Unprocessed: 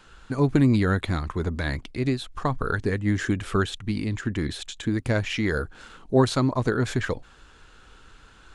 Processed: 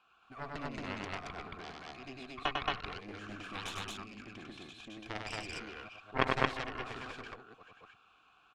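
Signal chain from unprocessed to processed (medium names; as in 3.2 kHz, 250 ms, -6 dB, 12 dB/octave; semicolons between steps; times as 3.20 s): chunks repeated in reverse 368 ms, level -11 dB; peaking EQ 560 Hz -12.5 dB 0.89 oct; 3.35–3.81 s: transient shaper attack -1 dB, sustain +11 dB; vowel filter a; Chebyshev shaper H 3 -8 dB, 6 -28 dB, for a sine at -25 dBFS; on a send: loudspeakers at several distances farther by 34 m -3 dB, 77 m 0 dB; on the sum: trim +15 dB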